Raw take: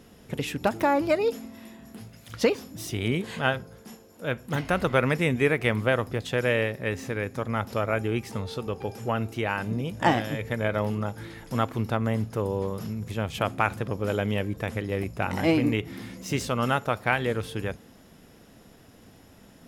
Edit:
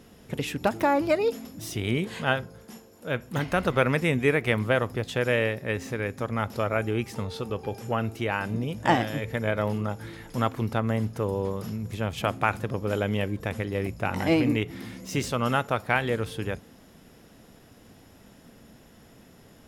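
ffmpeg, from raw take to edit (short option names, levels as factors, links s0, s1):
-filter_complex "[0:a]asplit=2[s0][s1];[s0]atrim=end=1.452[s2];[s1]atrim=start=2.618[s3];[s2][s3]acrossfade=d=0.004:c1=hsin:c2=hsin"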